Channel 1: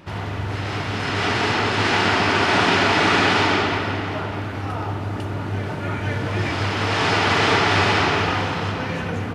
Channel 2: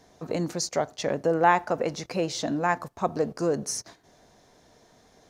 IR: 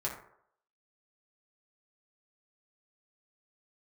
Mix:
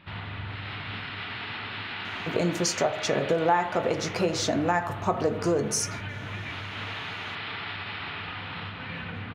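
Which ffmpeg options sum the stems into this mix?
-filter_complex "[0:a]firequalizer=gain_entry='entry(210,0);entry(350,-7);entry(1200,2);entry(2300,6);entry(3900,6);entry(6200,-22);entry(9400,-16)':delay=0.05:min_phase=1,alimiter=limit=0.133:level=0:latency=1:release=481,volume=0.376[s0];[1:a]adelay=2050,volume=1.12,asplit=2[s1][s2];[s2]volume=0.596[s3];[2:a]atrim=start_sample=2205[s4];[s3][s4]afir=irnorm=-1:irlink=0[s5];[s0][s1][s5]amix=inputs=3:normalize=0,acompressor=threshold=0.0794:ratio=3"

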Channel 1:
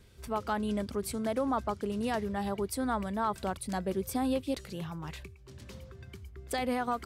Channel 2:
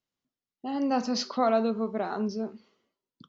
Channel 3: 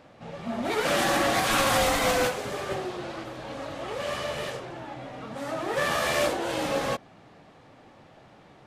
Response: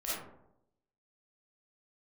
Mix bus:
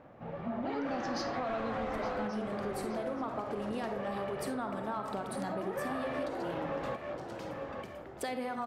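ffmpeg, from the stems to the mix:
-filter_complex "[0:a]highpass=160,highshelf=f=6700:g=-7.5,adelay=1700,volume=0.891,asplit=2[s0][s1];[s1]volume=0.422[s2];[1:a]volume=0.891,asplit=3[s3][s4][s5];[s4]volume=0.266[s6];[s5]volume=0.188[s7];[2:a]lowpass=1600,volume=0.841,asplit=2[s8][s9];[s9]volume=0.251[s10];[3:a]atrim=start_sample=2205[s11];[s2][s6]amix=inputs=2:normalize=0[s12];[s12][s11]afir=irnorm=-1:irlink=0[s13];[s7][s10]amix=inputs=2:normalize=0,aecho=0:1:869|1738|2607|3476|4345:1|0.37|0.137|0.0507|0.0187[s14];[s0][s3][s8][s13][s14]amix=inputs=5:normalize=0,asoftclip=type=tanh:threshold=0.188,acompressor=threshold=0.0224:ratio=6"

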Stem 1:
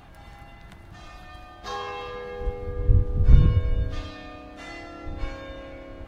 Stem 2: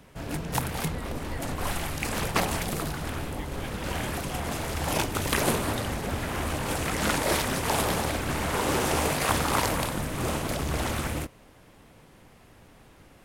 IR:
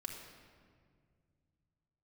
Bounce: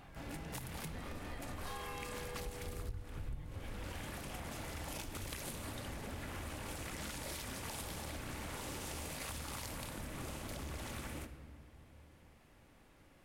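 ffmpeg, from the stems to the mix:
-filter_complex "[0:a]volume=0.398,afade=t=out:st=2.77:d=0.7:silence=0.281838[s0];[1:a]acrossover=split=170|3000[s1][s2][s3];[s2]acompressor=threshold=0.0251:ratio=6[s4];[s1][s4][s3]amix=inputs=3:normalize=0,volume=0.2,asplit=2[s5][s6];[s6]volume=0.708[s7];[2:a]atrim=start_sample=2205[s8];[s7][s8]afir=irnorm=-1:irlink=0[s9];[s0][s5][s9]amix=inputs=3:normalize=0,equalizer=f=2100:t=o:w=0.77:g=2,acompressor=threshold=0.01:ratio=6"

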